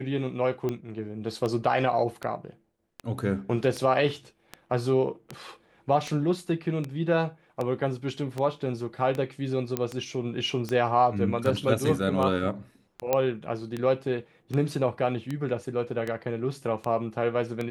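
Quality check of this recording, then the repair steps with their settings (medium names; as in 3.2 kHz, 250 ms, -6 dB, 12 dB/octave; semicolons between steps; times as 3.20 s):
tick 78 rpm -18 dBFS
9.77 s: pop -12 dBFS
13.13 s: pop -10 dBFS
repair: de-click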